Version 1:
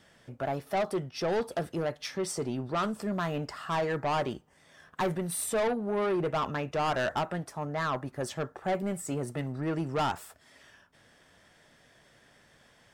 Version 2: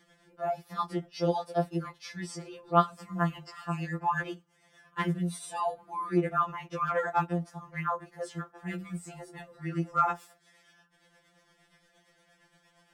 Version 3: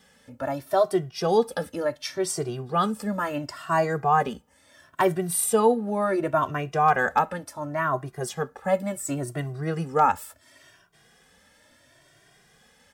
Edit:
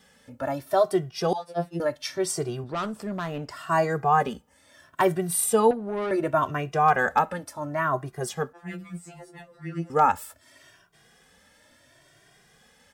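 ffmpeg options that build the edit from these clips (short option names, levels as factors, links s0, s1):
-filter_complex "[1:a]asplit=2[s0][s1];[0:a]asplit=2[s2][s3];[2:a]asplit=5[s4][s5][s6][s7][s8];[s4]atrim=end=1.332[s9];[s0]atrim=start=1.328:end=1.802[s10];[s5]atrim=start=1.798:end=2.642[s11];[s2]atrim=start=2.638:end=3.512[s12];[s6]atrim=start=3.508:end=5.712[s13];[s3]atrim=start=5.708:end=6.112[s14];[s7]atrim=start=6.108:end=8.532[s15];[s1]atrim=start=8.528:end=9.902[s16];[s8]atrim=start=9.898[s17];[s9][s10]acrossfade=d=0.004:c1=hsin:c2=hsin[s18];[s18][s11]acrossfade=d=0.004:c1=hsin:c2=hsin[s19];[s19][s12]acrossfade=d=0.004:c1=hsin:c2=hsin[s20];[s20][s13]acrossfade=d=0.004:c1=hsin:c2=hsin[s21];[s21][s14]acrossfade=d=0.004:c1=hsin:c2=hsin[s22];[s22][s15]acrossfade=d=0.004:c1=hsin:c2=hsin[s23];[s23][s16]acrossfade=d=0.004:c1=hsin:c2=hsin[s24];[s24][s17]acrossfade=d=0.004:c1=hsin:c2=hsin"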